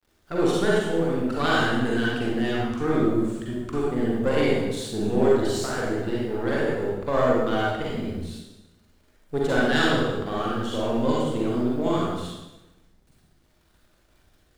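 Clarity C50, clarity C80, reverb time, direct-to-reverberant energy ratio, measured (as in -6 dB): -3.5 dB, 0.5 dB, 1.0 s, -6.0 dB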